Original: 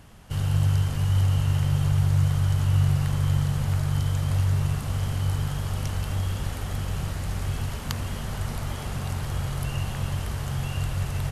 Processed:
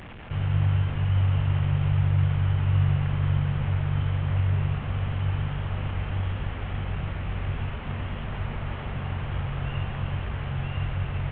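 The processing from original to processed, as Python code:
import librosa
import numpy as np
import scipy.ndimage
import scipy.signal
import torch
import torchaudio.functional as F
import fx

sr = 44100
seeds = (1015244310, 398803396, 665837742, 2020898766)

y = fx.delta_mod(x, sr, bps=16000, step_db=-34.5)
y = y * librosa.db_to_amplitude(-1.0)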